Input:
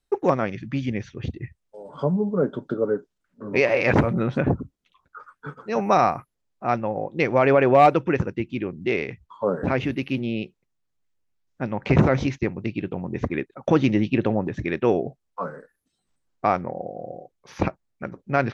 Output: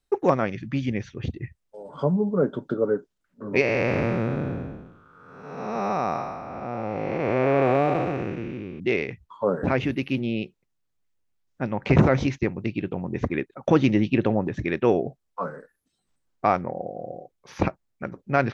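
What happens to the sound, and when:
3.61–8.8 time blur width 0.476 s

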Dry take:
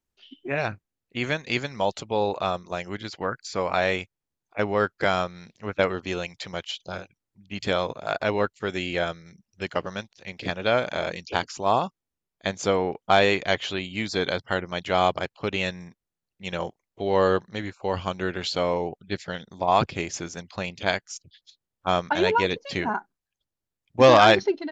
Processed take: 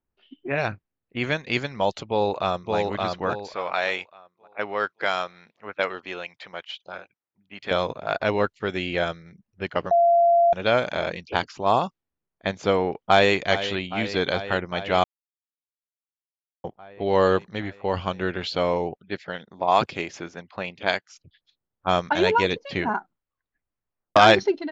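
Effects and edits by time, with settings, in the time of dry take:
2.06–2.76 echo throw 0.57 s, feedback 35%, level -2.5 dB
3.54–7.71 HPF 880 Hz 6 dB/oct
9.91–10.53 bleep 686 Hz -15.5 dBFS
12.94–13.34 echo throw 0.41 s, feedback 80%, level -12.5 dB
15.04–16.64 mute
18.97–21.14 HPF 260 Hz 6 dB/oct
22.97 tape stop 1.19 s
whole clip: low-pass opened by the level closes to 1700 Hz, open at -17 dBFS; gain +1.5 dB

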